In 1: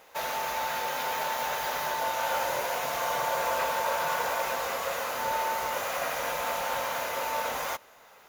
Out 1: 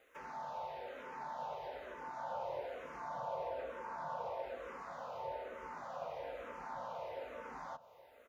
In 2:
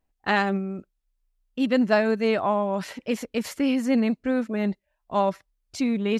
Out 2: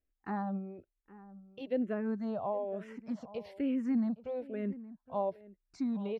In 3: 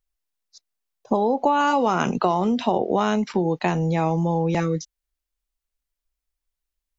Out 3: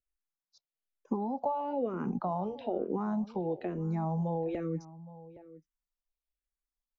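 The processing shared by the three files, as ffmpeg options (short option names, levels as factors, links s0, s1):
-filter_complex "[0:a]acrossover=split=6000[s0][s1];[s1]acompressor=threshold=0.00141:ratio=4:attack=1:release=60[s2];[s0][s2]amix=inputs=2:normalize=0,highshelf=f=3500:g=-8.5,acrossover=split=970[s3][s4];[s4]acompressor=threshold=0.00631:ratio=6[s5];[s3][s5]amix=inputs=2:normalize=0,asplit=2[s6][s7];[s7]adelay=816.3,volume=0.141,highshelf=f=4000:g=-18.4[s8];[s6][s8]amix=inputs=2:normalize=0,asplit=2[s9][s10];[s10]afreqshift=-1.1[s11];[s9][s11]amix=inputs=2:normalize=1,volume=0.422"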